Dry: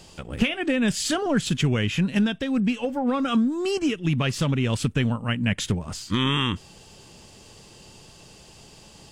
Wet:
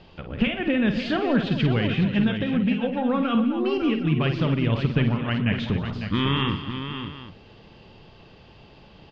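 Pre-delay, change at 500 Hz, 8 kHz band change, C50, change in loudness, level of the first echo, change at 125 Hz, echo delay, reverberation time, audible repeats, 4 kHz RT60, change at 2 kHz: no reverb audible, +1.0 dB, below −25 dB, no reverb audible, +0.5 dB, −8.5 dB, +1.5 dB, 51 ms, no reverb audible, 6, no reverb audible, 0.0 dB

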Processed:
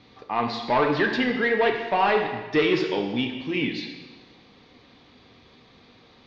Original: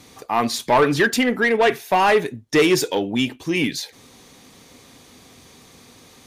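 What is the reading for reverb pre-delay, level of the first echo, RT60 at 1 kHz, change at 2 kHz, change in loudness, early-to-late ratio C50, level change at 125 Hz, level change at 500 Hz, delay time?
5 ms, no echo audible, 1.3 s, −4.5 dB, −4.5 dB, 5.5 dB, −5.0 dB, −4.5 dB, no echo audible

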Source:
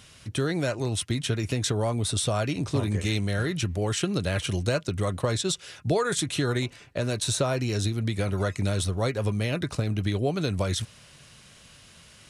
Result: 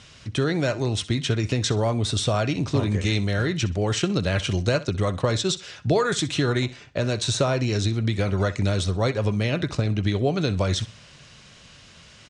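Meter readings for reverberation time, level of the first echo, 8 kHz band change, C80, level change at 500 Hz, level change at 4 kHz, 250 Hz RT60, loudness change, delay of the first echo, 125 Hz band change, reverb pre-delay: no reverb audible, −17.5 dB, −0.5 dB, no reverb audible, +3.5 dB, +3.5 dB, no reverb audible, +3.5 dB, 63 ms, +3.5 dB, no reverb audible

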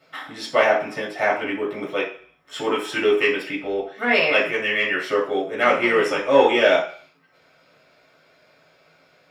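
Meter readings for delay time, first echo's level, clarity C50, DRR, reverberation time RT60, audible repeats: no echo audible, no echo audible, 7.0 dB, −5.0 dB, 0.50 s, no echo audible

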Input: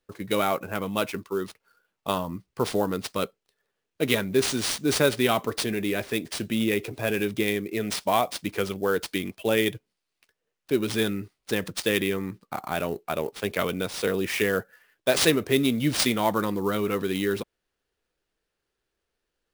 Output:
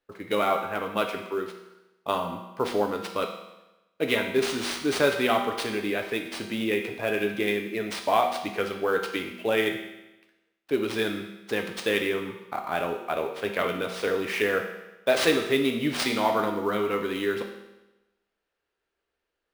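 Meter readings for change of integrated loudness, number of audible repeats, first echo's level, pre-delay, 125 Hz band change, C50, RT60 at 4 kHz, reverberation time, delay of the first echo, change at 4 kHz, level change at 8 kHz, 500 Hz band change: −1.0 dB, no echo audible, no echo audible, 5 ms, −7.5 dB, 6.5 dB, 1.0 s, 1.0 s, no echo audible, −2.0 dB, −7.5 dB, 0.0 dB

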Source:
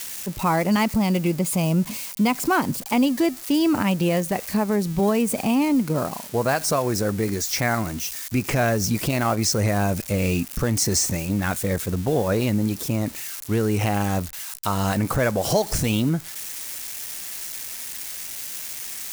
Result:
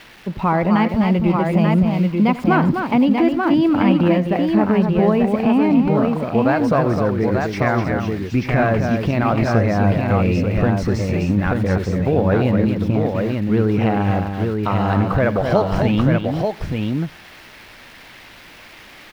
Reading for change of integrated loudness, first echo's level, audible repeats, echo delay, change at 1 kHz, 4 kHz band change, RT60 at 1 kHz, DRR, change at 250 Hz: +5.5 dB, −16.0 dB, 3, 90 ms, +5.0 dB, −4.5 dB, no reverb audible, no reverb audible, +6.5 dB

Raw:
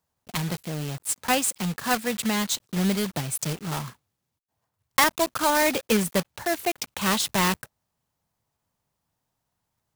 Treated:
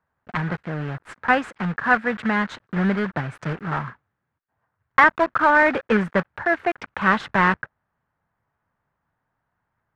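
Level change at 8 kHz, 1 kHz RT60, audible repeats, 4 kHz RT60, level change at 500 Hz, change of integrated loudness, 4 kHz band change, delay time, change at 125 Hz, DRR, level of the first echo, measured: below −20 dB, no reverb audible, no echo audible, no reverb audible, +3.5 dB, +3.5 dB, −9.5 dB, no echo audible, +2.5 dB, no reverb audible, no echo audible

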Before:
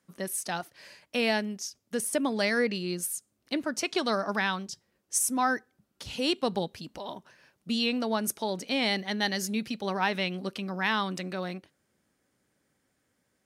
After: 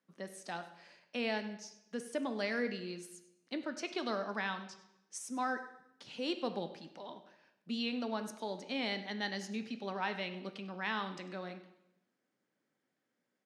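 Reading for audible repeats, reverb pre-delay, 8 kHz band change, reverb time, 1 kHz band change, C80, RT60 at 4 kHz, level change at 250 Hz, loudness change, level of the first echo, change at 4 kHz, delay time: 1, 5 ms, −17.5 dB, 0.85 s, −8.5 dB, 13.0 dB, 0.80 s, −8.5 dB, −9.5 dB, −16.0 dB, −10.0 dB, 99 ms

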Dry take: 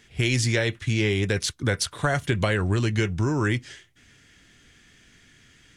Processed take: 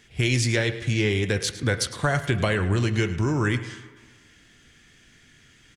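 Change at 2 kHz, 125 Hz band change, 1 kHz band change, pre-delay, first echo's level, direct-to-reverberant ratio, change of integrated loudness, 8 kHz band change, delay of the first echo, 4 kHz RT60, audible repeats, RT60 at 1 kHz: +0.5 dB, +0.5 dB, +0.5 dB, 3 ms, −15.0 dB, 10.0 dB, +0.5 dB, 0.0 dB, 107 ms, 1.3 s, 1, 1.6 s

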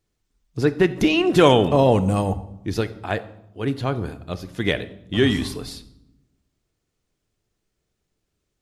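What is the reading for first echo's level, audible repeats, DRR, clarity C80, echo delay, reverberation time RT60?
no echo audible, no echo audible, 11.5 dB, 18.0 dB, no echo audible, 0.85 s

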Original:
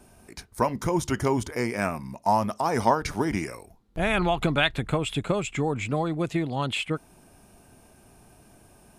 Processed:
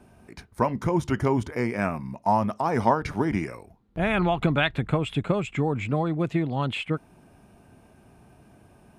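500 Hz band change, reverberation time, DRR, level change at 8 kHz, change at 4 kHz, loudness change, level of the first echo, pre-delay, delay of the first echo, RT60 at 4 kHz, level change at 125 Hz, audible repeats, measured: 0.0 dB, no reverb audible, no reverb audible, −10.0 dB, −4.0 dB, +0.5 dB, no echo audible, no reverb audible, no echo audible, no reverb audible, +3.0 dB, no echo audible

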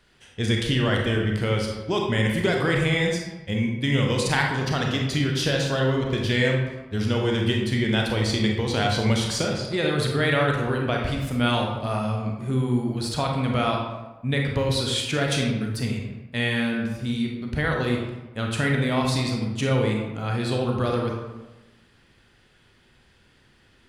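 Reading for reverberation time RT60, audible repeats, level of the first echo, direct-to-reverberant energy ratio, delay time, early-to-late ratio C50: 1.1 s, no echo audible, no echo audible, 0.0 dB, no echo audible, 2.5 dB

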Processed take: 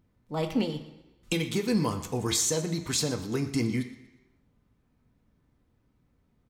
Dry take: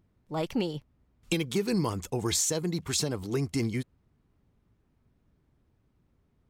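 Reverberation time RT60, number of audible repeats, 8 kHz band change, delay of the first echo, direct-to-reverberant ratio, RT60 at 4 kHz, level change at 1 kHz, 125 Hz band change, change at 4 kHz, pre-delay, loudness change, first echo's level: 1.0 s, 2, +1.0 dB, 120 ms, 3.5 dB, 0.95 s, +1.0 dB, +0.5 dB, +1.5 dB, 3 ms, +1.0 dB, −16.5 dB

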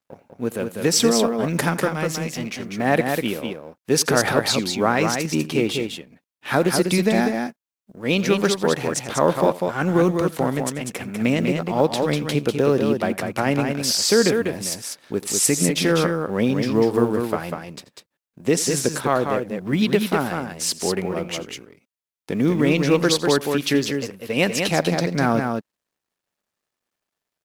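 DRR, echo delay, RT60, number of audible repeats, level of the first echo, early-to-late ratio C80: no reverb audible, 85 ms, no reverb audible, 2, −19.0 dB, no reverb audible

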